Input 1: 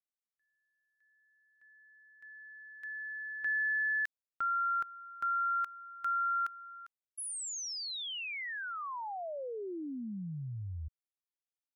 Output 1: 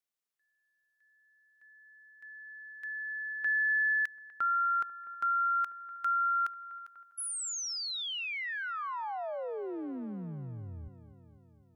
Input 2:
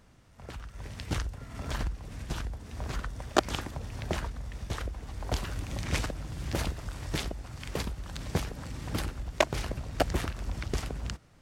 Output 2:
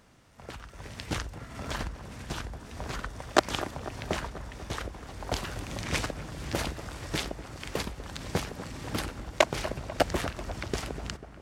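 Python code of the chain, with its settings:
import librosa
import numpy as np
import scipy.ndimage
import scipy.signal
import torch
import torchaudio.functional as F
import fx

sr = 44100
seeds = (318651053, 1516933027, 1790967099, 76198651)

p1 = fx.low_shelf(x, sr, hz=130.0, db=-9.5)
p2 = p1 + fx.echo_wet_lowpass(p1, sr, ms=246, feedback_pct=66, hz=1600.0, wet_db=-13.5, dry=0)
p3 = fx.doppler_dist(p2, sr, depth_ms=0.11)
y = F.gain(torch.from_numpy(p3), 3.0).numpy()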